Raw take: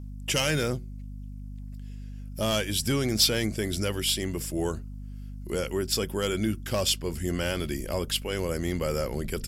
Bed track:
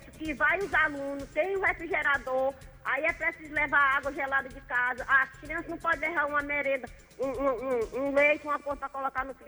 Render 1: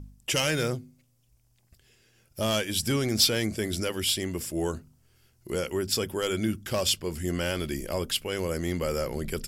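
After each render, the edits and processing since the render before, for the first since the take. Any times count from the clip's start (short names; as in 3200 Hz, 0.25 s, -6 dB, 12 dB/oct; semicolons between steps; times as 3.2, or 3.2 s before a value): de-hum 50 Hz, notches 5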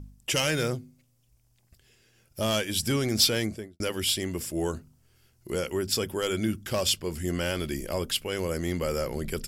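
3.37–3.8 studio fade out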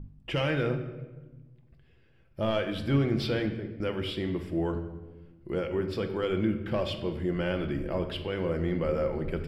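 air absorption 450 m; shoebox room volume 780 m³, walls mixed, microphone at 0.75 m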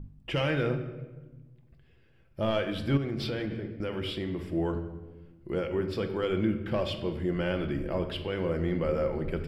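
2.97–4.46 compressor, threshold -28 dBFS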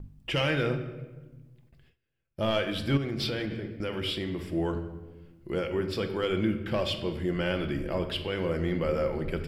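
gate with hold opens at -49 dBFS; high shelf 2300 Hz +7.5 dB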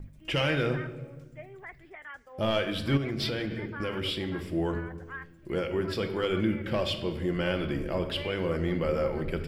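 add bed track -18 dB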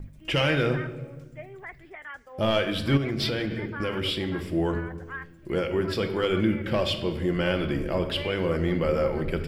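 gain +3.5 dB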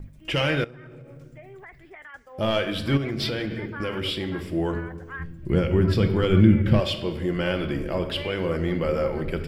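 0.64–2.14 compressor 20:1, threshold -39 dBFS; 5.19–6.8 tone controls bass +14 dB, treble -1 dB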